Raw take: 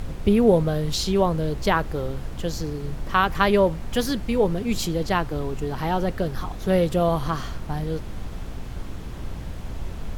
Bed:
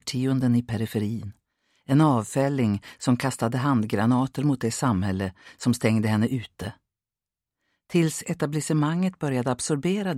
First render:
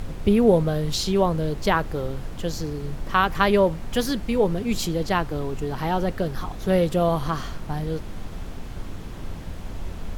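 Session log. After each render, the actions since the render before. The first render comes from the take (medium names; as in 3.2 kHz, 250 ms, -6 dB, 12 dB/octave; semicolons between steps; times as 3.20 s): de-hum 60 Hz, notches 2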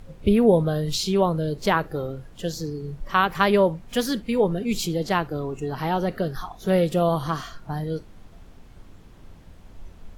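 noise print and reduce 13 dB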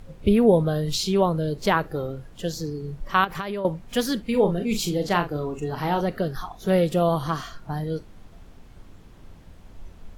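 3.24–3.65 s: compression 10:1, threshold -26 dBFS; 4.30–6.01 s: doubling 40 ms -8 dB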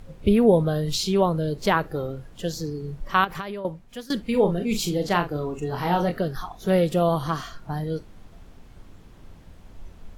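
3.23–4.10 s: fade out, to -19 dB; 5.70–6.18 s: doubling 23 ms -5 dB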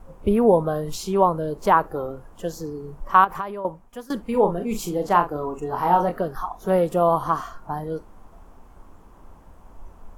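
gate with hold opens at -42 dBFS; graphic EQ 125/1000/2000/4000 Hz -8/+10/-5/-11 dB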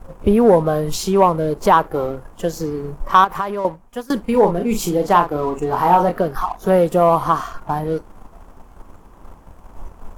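waveshaping leveller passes 1; in parallel at -1 dB: compression, threshold -25 dBFS, peak gain reduction 16 dB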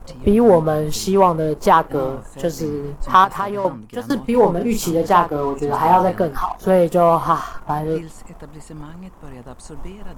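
add bed -13 dB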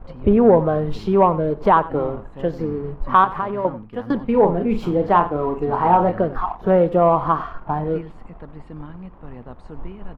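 distance through air 410 m; delay 93 ms -18 dB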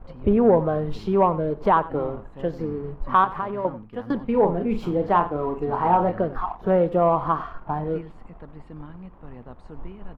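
trim -4 dB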